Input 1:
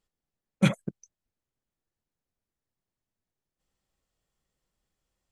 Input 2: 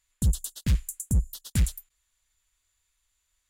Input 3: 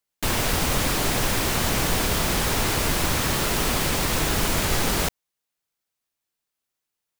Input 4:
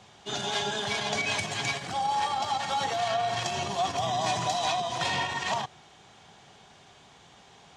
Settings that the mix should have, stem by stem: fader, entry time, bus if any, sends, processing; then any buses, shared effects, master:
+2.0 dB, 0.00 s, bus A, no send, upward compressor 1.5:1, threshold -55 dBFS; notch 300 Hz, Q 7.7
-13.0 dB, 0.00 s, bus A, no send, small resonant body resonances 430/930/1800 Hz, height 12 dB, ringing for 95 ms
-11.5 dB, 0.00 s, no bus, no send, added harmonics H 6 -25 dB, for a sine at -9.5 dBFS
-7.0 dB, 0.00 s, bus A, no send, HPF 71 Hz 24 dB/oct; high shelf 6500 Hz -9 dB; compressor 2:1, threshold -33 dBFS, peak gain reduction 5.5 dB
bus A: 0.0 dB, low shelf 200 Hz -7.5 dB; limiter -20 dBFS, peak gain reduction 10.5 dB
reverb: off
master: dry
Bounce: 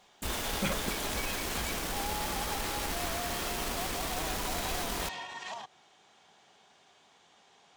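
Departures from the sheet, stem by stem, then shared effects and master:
stem 4: missing high shelf 6500 Hz -9 dB; master: extra bell 120 Hz -10 dB 0.72 oct

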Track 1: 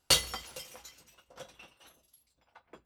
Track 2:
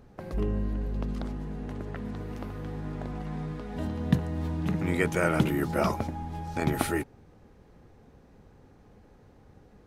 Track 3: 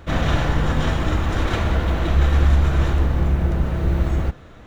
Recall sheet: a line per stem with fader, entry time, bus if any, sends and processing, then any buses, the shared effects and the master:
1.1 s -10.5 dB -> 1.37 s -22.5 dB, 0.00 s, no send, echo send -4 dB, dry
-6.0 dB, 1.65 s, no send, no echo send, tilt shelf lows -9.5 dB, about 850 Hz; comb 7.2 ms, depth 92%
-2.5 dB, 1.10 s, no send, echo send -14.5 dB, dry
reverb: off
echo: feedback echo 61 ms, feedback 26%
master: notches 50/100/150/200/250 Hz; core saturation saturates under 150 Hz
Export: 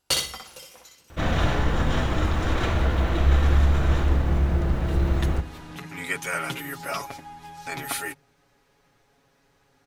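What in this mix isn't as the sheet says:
stem 1 -10.5 dB -> 0.0 dB; stem 2: entry 1.65 s -> 1.10 s; master: missing core saturation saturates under 150 Hz

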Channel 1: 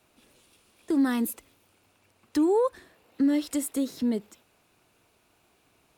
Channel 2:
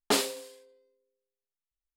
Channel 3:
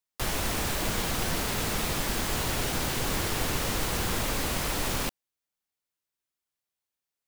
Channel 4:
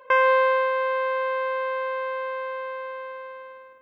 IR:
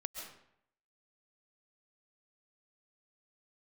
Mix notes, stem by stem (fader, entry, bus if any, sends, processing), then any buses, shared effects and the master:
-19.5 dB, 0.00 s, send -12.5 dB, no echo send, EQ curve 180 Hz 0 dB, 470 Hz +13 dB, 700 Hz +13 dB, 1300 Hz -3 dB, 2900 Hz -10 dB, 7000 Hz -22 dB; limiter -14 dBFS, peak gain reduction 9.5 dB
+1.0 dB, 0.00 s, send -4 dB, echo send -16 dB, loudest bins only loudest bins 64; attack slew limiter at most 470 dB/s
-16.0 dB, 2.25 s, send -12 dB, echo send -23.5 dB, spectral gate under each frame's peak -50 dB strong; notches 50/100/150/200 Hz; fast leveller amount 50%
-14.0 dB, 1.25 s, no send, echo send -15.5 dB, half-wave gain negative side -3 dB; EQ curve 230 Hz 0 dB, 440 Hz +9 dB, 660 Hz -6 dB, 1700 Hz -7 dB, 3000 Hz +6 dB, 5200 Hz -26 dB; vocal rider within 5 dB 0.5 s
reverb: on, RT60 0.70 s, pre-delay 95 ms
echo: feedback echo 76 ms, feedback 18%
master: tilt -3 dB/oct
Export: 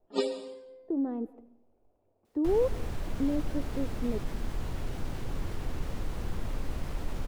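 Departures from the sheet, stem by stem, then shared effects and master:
stem 1: missing limiter -14 dBFS, peak gain reduction 9.5 dB; stem 4: muted

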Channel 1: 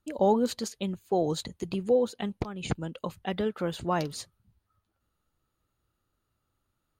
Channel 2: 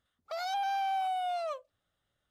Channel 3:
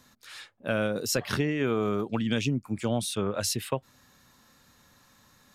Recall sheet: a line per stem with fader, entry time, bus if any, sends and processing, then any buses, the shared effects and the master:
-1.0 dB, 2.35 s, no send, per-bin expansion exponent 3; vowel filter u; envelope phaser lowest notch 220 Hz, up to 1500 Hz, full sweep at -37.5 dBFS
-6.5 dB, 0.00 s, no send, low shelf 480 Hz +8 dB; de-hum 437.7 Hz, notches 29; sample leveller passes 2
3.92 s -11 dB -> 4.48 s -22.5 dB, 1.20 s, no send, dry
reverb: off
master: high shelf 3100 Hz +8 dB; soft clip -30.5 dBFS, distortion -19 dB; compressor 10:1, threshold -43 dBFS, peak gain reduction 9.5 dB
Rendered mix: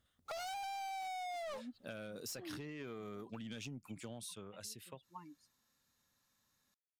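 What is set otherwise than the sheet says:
stem 1: entry 2.35 s -> 1.25 s; stem 2 -6.5 dB -> +1.0 dB

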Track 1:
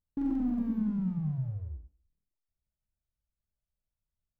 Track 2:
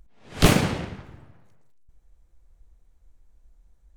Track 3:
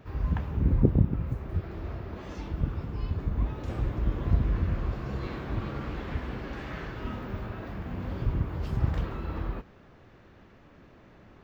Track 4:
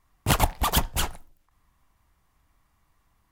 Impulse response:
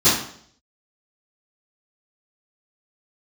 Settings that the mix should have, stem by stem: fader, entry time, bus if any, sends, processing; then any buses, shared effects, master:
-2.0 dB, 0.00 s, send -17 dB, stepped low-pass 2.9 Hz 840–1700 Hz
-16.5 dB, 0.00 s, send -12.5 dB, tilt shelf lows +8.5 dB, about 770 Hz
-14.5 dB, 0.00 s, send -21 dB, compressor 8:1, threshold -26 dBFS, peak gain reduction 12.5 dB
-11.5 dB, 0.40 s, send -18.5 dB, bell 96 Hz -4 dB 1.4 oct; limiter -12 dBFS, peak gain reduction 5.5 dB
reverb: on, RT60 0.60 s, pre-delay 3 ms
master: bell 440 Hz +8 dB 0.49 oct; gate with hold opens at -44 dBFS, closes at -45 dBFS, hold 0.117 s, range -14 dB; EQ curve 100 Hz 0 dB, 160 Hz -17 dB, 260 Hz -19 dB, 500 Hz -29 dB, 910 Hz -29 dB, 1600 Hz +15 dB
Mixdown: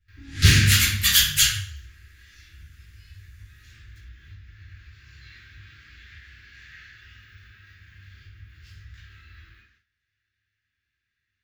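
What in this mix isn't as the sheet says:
stem 1 -2.0 dB -> -12.0 dB; stem 3 -14.5 dB -> -23.0 dB; reverb return +7.0 dB

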